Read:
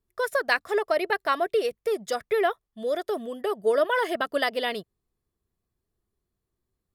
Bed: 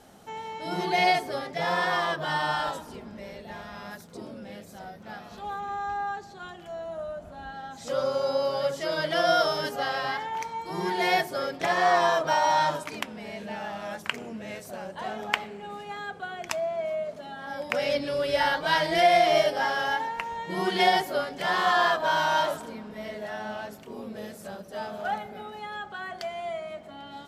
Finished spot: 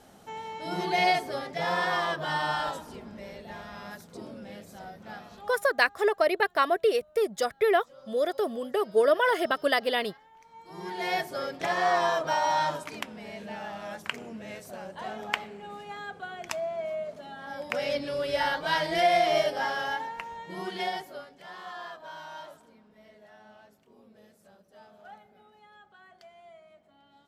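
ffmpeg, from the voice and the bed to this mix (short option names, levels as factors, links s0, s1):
-filter_complex "[0:a]adelay=5300,volume=1.06[s0];[1:a]volume=9.44,afade=t=out:st=5.18:d=0.49:silence=0.0749894,afade=t=in:st=10.42:d=0.96:silence=0.0891251,afade=t=out:st=19.68:d=1.74:silence=0.16788[s1];[s0][s1]amix=inputs=2:normalize=0"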